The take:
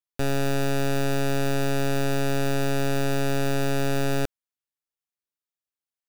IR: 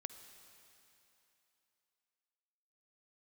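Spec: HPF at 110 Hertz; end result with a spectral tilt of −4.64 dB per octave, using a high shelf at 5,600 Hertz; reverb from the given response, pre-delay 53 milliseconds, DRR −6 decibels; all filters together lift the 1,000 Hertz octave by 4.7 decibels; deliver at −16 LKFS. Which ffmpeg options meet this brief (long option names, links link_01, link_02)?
-filter_complex "[0:a]highpass=110,equalizer=frequency=1000:width_type=o:gain=7.5,highshelf=frequency=5600:gain=-7.5,asplit=2[link_01][link_02];[1:a]atrim=start_sample=2205,adelay=53[link_03];[link_02][link_03]afir=irnorm=-1:irlink=0,volume=9.5dB[link_04];[link_01][link_04]amix=inputs=2:normalize=0,volume=3dB"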